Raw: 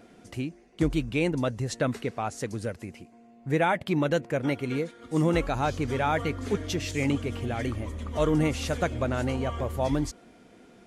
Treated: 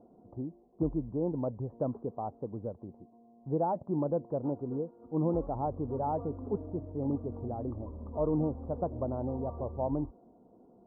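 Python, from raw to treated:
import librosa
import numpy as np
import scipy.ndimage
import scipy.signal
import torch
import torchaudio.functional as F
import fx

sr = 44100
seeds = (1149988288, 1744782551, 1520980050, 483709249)

y = scipy.signal.sosfilt(scipy.signal.butter(8, 1000.0, 'lowpass', fs=sr, output='sos'), x)
y = fx.low_shelf(y, sr, hz=120.0, db=-5.0)
y = y * 10.0 ** (-4.5 / 20.0)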